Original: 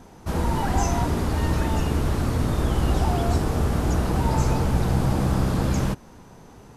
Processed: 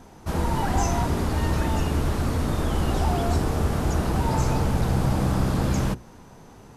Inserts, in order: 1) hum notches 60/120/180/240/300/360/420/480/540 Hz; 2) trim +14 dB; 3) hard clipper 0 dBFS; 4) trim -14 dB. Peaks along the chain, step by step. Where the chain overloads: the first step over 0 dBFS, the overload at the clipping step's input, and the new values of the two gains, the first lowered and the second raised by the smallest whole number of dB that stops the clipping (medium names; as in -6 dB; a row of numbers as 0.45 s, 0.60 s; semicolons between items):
-8.5 dBFS, +5.5 dBFS, 0.0 dBFS, -14.0 dBFS; step 2, 5.5 dB; step 2 +8 dB, step 4 -8 dB